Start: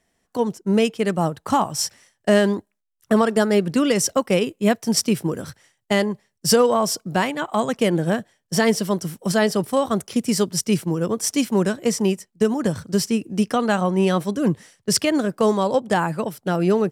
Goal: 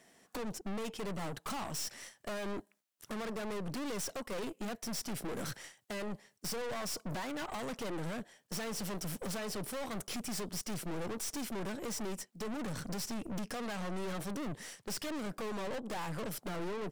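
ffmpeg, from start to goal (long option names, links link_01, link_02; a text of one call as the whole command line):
ffmpeg -i in.wav -af "highpass=170,acompressor=threshold=-31dB:ratio=6,aeval=exprs='(tanh(224*val(0)+0.6)-tanh(0.6))/224':channel_layout=same,volume=9.5dB" out.wav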